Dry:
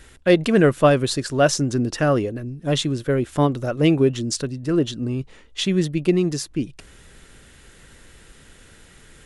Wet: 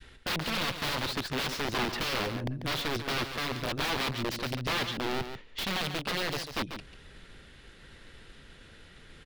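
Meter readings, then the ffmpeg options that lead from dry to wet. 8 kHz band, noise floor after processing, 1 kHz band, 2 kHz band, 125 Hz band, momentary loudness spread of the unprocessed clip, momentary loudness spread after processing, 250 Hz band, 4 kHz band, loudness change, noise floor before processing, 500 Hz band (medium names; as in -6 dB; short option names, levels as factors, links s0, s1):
-11.0 dB, -53 dBFS, -6.5 dB, -3.5 dB, -14.5 dB, 11 LU, 5 LU, -16.5 dB, -2.0 dB, -11.0 dB, -49 dBFS, -16.5 dB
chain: -filter_complex "[0:a]agate=range=0.0224:threshold=0.00501:ratio=3:detection=peak,aeval=exprs='0.668*(cos(1*acos(clip(val(0)/0.668,-1,1)))-cos(1*PI/2))+0.075*(cos(4*acos(clip(val(0)/0.668,-1,1)))-cos(4*PI/2))+0.0168*(cos(6*acos(clip(val(0)/0.668,-1,1)))-cos(6*PI/2))+0.0596*(cos(7*acos(clip(val(0)/0.668,-1,1)))-cos(7*PI/2))+0.0237*(cos(8*acos(clip(val(0)/0.668,-1,1)))-cos(8*PI/2))':c=same,adynamicequalizer=threshold=0.0355:dfrequency=560:dqfactor=1.1:tfrequency=560:tqfactor=1.1:attack=5:release=100:ratio=0.375:range=2.5:mode=cutabove:tftype=bell,acontrast=47,alimiter=limit=0.299:level=0:latency=1:release=411,aeval=exprs='(mod(15*val(0)+1,2)-1)/15':c=same,highshelf=f=5600:t=q:w=1.5:g=-9,asplit=2[s0][s1];[s1]aecho=0:1:142:0.355[s2];[s0][s2]amix=inputs=2:normalize=0,volume=0.891"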